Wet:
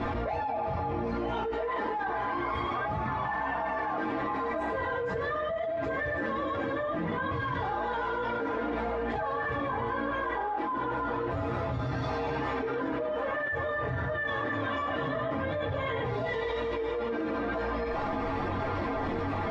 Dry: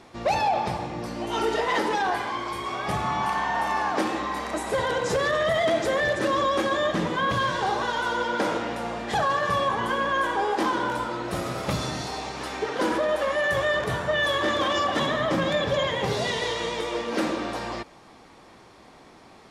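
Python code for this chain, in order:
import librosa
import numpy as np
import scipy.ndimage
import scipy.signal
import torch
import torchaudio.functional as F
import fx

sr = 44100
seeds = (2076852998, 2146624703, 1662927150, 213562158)

p1 = scipy.signal.sosfilt(scipy.signal.butter(2, 1800.0, 'lowpass', fs=sr, output='sos'), x)
p2 = fx.low_shelf(p1, sr, hz=92.0, db=6.5)
p3 = fx.comb_fb(p2, sr, f0_hz=93.0, decay_s=0.15, harmonics='odd', damping=0.0, mix_pct=90)
p4 = fx.chorus_voices(p3, sr, voices=6, hz=0.31, base_ms=18, depth_ms=4.9, mix_pct=60)
p5 = p4 + fx.echo_single(p4, sr, ms=84, db=-15.5, dry=0)
p6 = fx.env_flatten(p5, sr, amount_pct=100)
y = F.gain(torch.from_numpy(p6), -6.0).numpy()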